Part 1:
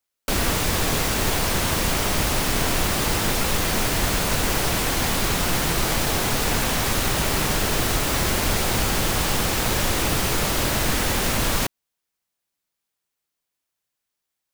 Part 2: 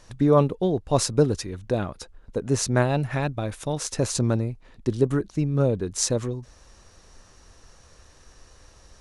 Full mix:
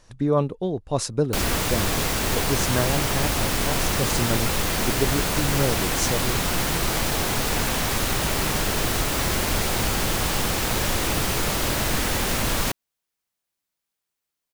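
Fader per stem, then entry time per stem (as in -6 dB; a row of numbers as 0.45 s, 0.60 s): -1.5 dB, -3.0 dB; 1.05 s, 0.00 s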